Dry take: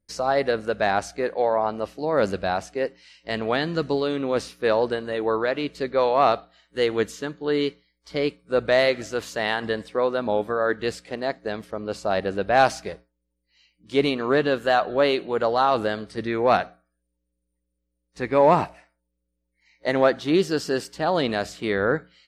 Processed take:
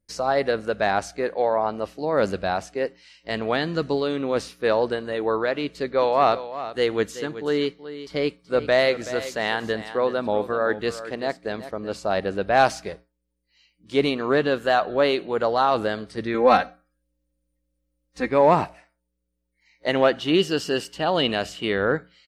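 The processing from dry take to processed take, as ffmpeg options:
-filter_complex "[0:a]asplit=3[s0][s1][s2];[s0]afade=t=out:st=6:d=0.02[s3];[s1]aecho=1:1:377:0.224,afade=t=in:st=6:d=0.02,afade=t=out:st=11.93:d=0.02[s4];[s2]afade=t=in:st=11.93:d=0.02[s5];[s3][s4][s5]amix=inputs=3:normalize=0,asettb=1/sr,asplit=3[s6][s7][s8];[s6]atrim=end=16.344[s9];[s7]atrim=start=16.34:end=18.29,asetpts=PTS-STARTPTS,afade=t=in:d=0.004:c=qsin,afade=t=out:st=1.946:d=0.004:c=qsin,aecho=1:1:3.8:0.91,atrim=end_sample=85995[s10];[s8]atrim=start=18.286[s11];[s9][s10]acrossfade=d=0.004:c1=hsin:c2=qsin[s12];[s12][s11]acrossfade=d=0.004:c1=qsin:c2=hsin,asettb=1/sr,asplit=3[s13][s14][s15];[s13]atrim=end=19.884[s16];[s14]atrim=start=19.88:end=21.97,asetpts=PTS-STARTPTS,afade=t=in:d=0.004:c=qsin,afade=t=out:st=2.086:d=0.004:c=qsin,equalizer=f=2900:w=7.9:g=14[s17];[s15]atrim=start=21.966[s18];[s16][s17]acrossfade=d=0.004:c1=hsin:c2=qsin[s19];[s19][s18]acrossfade=d=0.004:c1=qsin:c2=hsin"

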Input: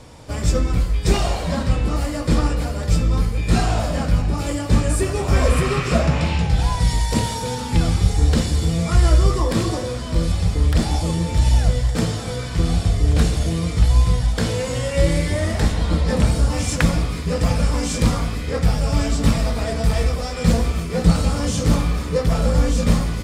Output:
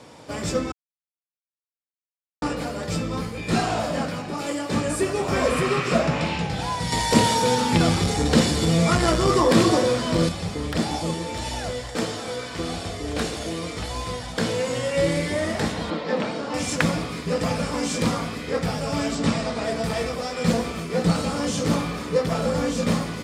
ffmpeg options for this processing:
-filter_complex "[0:a]asettb=1/sr,asplit=3[s0][s1][s2];[s0]atrim=end=4.084[s3];[s1]atrim=start=4.08:end=4.75,asetpts=PTS-STARTPTS,afade=t=in:d=0.004:c=qsin,afade=t=out:st=0.666:d=0.004:c=qsin,highpass=f=230:p=1[s4];[s2]atrim=start=4.746[s5];[s3][s4]acrossfade=d=0.004:c1=hsin:c2=qsin[s6];[s6][s5]acrossfade=d=0.004:c1=qsin:c2=hsin,asettb=1/sr,asplit=3[s7][s8][s9];[s7]atrim=end=6.924[s10];[s8]atrim=start=6.92:end=10.29,asetpts=PTS-STARTPTS,afade=t=in:d=0.004:c=qsin,afade=t=out:st=3.366:d=0.004:c=qsin,acontrast=76[s11];[s9]atrim=start=10.286[s12];[s10][s11]acrossfade=d=0.004:c1=hsin:c2=qsin[s13];[s13][s12]acrossfade=d=0.004:c1=qsin:c2=hsin,asettb=1/sr,asplit=3[s14][s15][s16];[s14]atrim=end=11.144[s17];[s15]atrim=start=11.14:end=14.3,asetpts=PTS-STARTPTS,afade=t=in:d=0.004:c=qsin,afade=t=out:st=3.156:d=0.004:c=qsin,equalizer=f=150:w=1.5:g=-9.5[s18];[s16]atrim=start=14.296[s19];[s17][s18]acrossfade=d=0.004:c1=hsin:c2=qsin[s20];[s20][s19]acrossfade=d=0.004:c1=qsin:c2=hsin,asettb=1/sr,asplit=3[s21][s22][s23];[s21]atrim=end=15.904[s24];[s22]atrim=start=15.9:end=16.54,asetpts=PTS-STARTPTS,afade=t=in:d=0.004:c=qsin,afade=t=out:st=0.636:d=0.004:c=qsin,highpass=250,lowpass=4100[s25];[s23]atrim=start=16.536[s26];[s24][s25]acrossfade=d=0.004:c1=hsin:c2=qsin[s27];[s27][s26]acrossfade=d=0.004:c1=qsin:c2=hsin,asettb=1/sr,asplit=3[s28][s29][s30];[s28]atrim=end=19.154[s31];[s29]atrim=start=19.15:end=19.64,asetpts=PTS-STARTPTS,afade=t=in:d=0.004:c=qsin,afade=t=out:st=0.486:d=0.004:c=qsin,lowpass=f=9000:w=0.5412,lowpass=f=9000:w=1.3066[s32];[s30]atrim=start=19.636[s33];[s31][s32]acrossfade=d=0.004:c1=hsin:c2=qsin[s34];[s34][s33]acrossfade=d=0.004:c1=qsin:c2=hsin,asplit=3[s35][s36][s37];[s35]atrim=end=0.72,asetpts=PTS-STARTPTS,afade=t=out:st=0.716:d=0.004:c=hsin[s38];[s36]atrim=start=0.72:end=2.42,asetpts=PTS-STARTPTS,volume=0[s39];[s37]atrim=start=2.42,asetpts=PTS-STARTPTS,afade=t=in:d=0.004:c=hsin[s40];[s38][s39][s40]concat=n=3:v=0:a=1,highpass=190,highshelf=f=7500:g=-6.5"

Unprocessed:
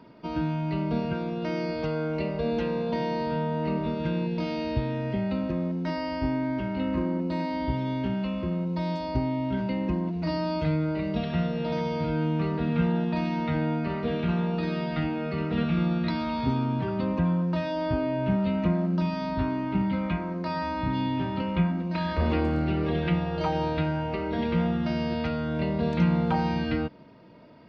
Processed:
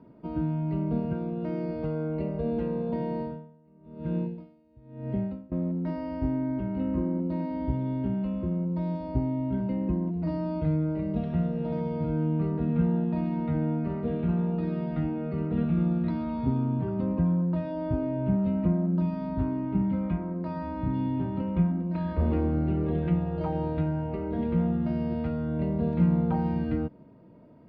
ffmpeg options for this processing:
-filter_complex "[0:a]asettb=1/sr,asplit=3[s0][s1][s2];[s0]atrim=end=3.174[s3];[s1]atrim=start=3.17:end=5.52,asetpts=PTS-STARTPTS,afade=t=in:d=0.004:c=qsin,afade=t=out:st=2.346:d=0.004:c=qsin,aeval=exprs='val(0)*pow(10,-31*(0.5-0.5*cos(2*PI*1*n/s))/20)':c=same[s4];[s2]atrim=start=5.516[s5];[s3][s4]acrossfade=d=0.004:c1=hsin:c2=qsin[s6];[s6][s5]acrossfade=d=0.004:c1=qsin:c2=hsin,lowpass=f=1000:p=1,tiltshelf=f=650:g=4,volume=0.708"

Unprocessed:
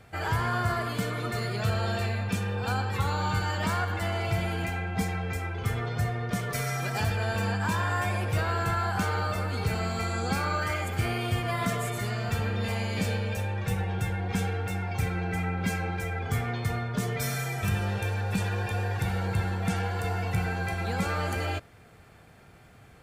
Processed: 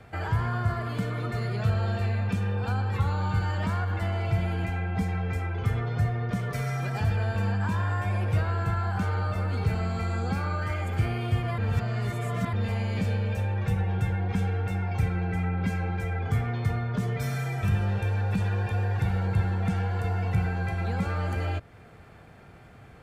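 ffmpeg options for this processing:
-filter_complex "[0:a]asplit=3[s0][s1][s2];[s0]atrim=end=11.582[s3];[s1]atrim=start=11.578:end=12.532,asetpts=PTS-STARTPTS,areverse[s4];[s2]atrim=start=12.528[s5];[s3][s4]acrossfade=d=0.004:c1=hsin:c2=hsin[s6];[s6][s5]acrossfade=d=0.004:c1=hsin:c2=hsin,highshelf=f=4000:g=-10.5,acrossover=split=180[s7][s8];[s8]acompressor=threshold=0.00891:ratio=2[s9];[s7][s9]amix=inputs=2:normalize=0,volume=1.58"

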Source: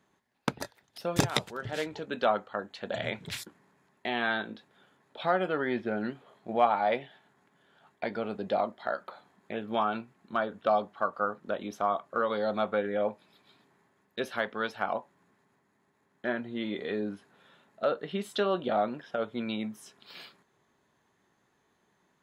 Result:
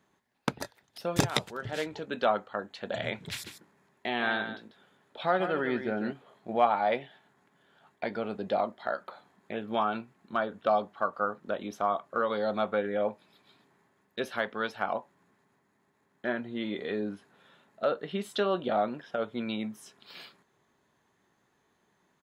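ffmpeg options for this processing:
-filter_complex "[0:a]asplit=3[s0][s1][s2];[s0]afade=t=out:st=3.43:d=0.02[s3];[s1]aecho=1:1:145:0.335,afade=t=in:st=3.43:d=0.02,afade=t=out:st=6.11:d=0.02[s4];[s2]afade=t=in:st=6.11:d=0.02[s5];[s3][s4][s5]amix=inputs=3:normalize=0"

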